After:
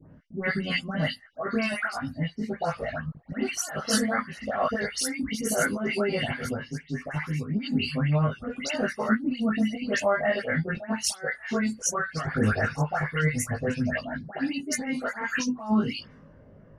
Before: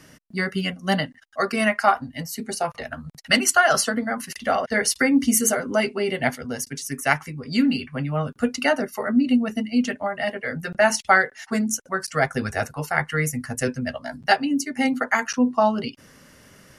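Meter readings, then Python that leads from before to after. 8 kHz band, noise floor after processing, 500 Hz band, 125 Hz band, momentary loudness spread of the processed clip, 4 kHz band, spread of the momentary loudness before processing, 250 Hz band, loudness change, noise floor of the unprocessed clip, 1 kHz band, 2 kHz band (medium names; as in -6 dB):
-6.0 dB, -52 dBFS, -5.0 dB, +2.0 dB, 7 LU, -5.0 dB, 11 LU, -4.5 dB, -5.5 dB, -53 dBFS, -8.5 dB, -6.0 dB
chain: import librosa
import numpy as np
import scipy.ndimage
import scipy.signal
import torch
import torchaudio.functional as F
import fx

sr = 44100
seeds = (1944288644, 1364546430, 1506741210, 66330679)

y = fx.env_lowpass(x, sr, base_hz=630.0, full_db=-18.0)
y = fx.dynamic_eq(y, sr, hz=1500.0, q=1.8, threshold_db=-34.0, ratio=4.0, max_db=4)
y = fx.over_compress(y, sr, threshold_db=-23.0, ratio=-0.5)
y = fx.dispersion(y, sr, late='highs', ms=136.0, hz=2300.0)
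y = fx.chorus_voices(y, sr, voices=4, hz=0.31, base_ms=19, depth_ms=1.0, mix_pct=50)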